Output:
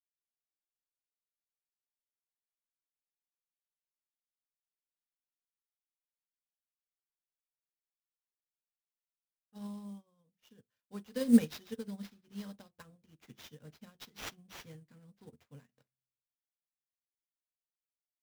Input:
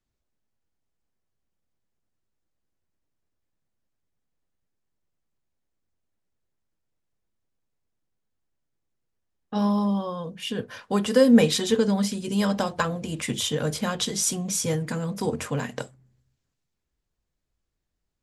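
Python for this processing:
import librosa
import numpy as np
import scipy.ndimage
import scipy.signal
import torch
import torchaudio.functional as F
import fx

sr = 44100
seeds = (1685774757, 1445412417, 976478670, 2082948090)

y = fx.peak_eq(x, sr, hz=840.0, db=-9.0, octaves=2.7)
y = fx.sample_hold(y, sr, seeds[0], rate_hz=9100.0, jitter_pct=20)
y = fx.upward_expand(y, sr, threshold_db=-41.0, expansion=2.5)
y = y * 10.0 ** (-2.0 / 20.0)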